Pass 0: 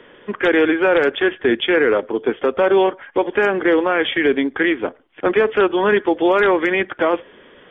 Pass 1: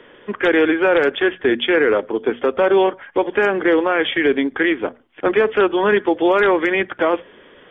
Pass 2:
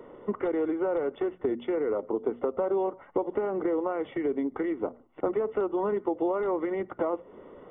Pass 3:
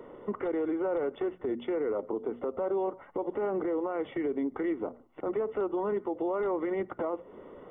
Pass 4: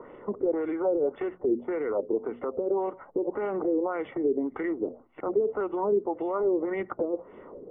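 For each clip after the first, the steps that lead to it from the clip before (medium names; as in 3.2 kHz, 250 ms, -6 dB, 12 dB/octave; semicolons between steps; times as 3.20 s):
hum notches 60/120/180/240 Hz
compression 6:1, threshold -25 dBFS, peak gain reduction 13.5 dB; Savitzky-Golay filter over 65 samples
peak limiter -23.5 dBFS, peak gain reduction 9 dB
LFO low-pass sine 1.8 Hz 380–2600 Hz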